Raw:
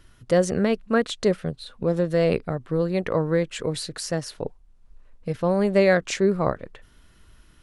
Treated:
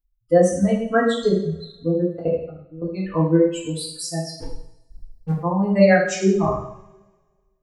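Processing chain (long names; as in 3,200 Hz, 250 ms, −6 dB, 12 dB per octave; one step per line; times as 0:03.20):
spectral dynamics exaggerated over time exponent 3
dynamic equaliser 2,900 Hz, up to −7 dB, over −45 dBFS, Q 0.71
0:02.09–0:02.82: output level in coarse steps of 24 dB
0:04.33–0:05.32: leveller curve on the samples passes 3
coupled-rooms reverb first 0.66 s, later 1.7 s, from −23 dB, DRR −6.5 dB
level +3.5 dB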